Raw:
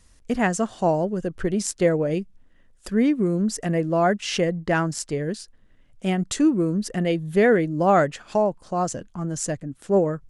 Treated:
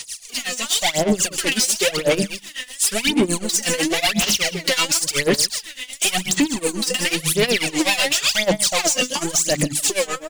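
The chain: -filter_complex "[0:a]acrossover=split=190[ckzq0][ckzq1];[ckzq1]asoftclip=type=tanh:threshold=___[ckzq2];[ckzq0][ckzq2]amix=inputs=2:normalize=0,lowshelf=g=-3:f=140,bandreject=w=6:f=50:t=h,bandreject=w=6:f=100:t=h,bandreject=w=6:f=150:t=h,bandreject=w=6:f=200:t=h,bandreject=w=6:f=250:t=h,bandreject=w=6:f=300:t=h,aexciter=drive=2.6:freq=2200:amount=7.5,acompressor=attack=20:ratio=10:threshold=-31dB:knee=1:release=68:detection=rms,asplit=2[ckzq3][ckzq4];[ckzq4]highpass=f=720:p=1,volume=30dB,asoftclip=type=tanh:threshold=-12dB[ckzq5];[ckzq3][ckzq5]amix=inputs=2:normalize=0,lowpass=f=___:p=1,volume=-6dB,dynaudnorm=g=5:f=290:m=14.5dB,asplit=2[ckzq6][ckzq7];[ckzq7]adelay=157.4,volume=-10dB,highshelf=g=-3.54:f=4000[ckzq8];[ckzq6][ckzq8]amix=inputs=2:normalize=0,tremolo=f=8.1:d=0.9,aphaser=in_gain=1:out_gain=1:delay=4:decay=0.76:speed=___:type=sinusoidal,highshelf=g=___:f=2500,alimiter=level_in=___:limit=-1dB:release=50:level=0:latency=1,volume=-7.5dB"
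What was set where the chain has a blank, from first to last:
-22.5dB, 4700, 0.94, 10, -5dB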